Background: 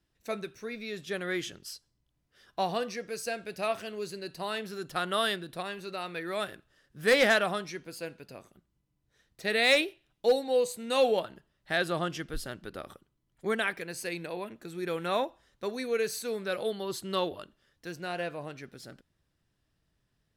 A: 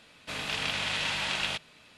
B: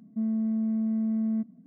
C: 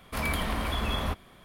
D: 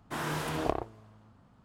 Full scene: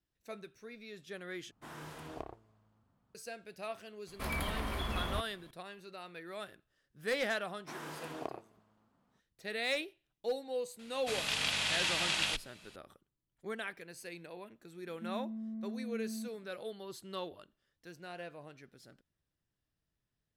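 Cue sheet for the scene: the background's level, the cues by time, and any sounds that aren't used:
background -11 dB
1.51 replace with D -14 dB
4.07 add C -7 dB
7.56 add D -10.5 dB + HPF 180 Hz
10.79 add A -5 dB + high shelf 4400 Hz +10.5 dB
14.85 add B -14 dB

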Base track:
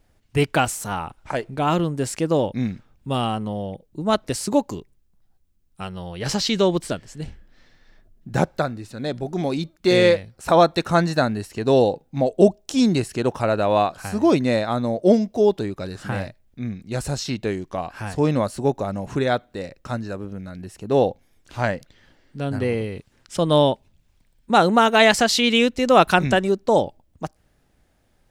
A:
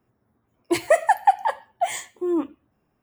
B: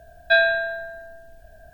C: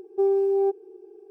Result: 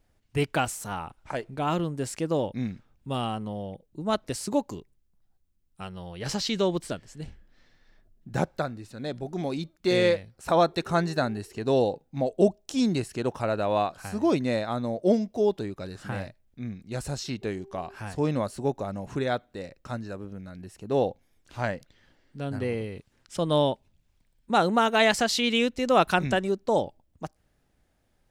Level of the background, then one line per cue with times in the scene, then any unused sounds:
base track -6.5 dB
10.68 add C -9 dB + compressor, threshold -37 dBFS
17.24 add C -18 dB + compressor, threshold -31 dBFS
not used: A, B

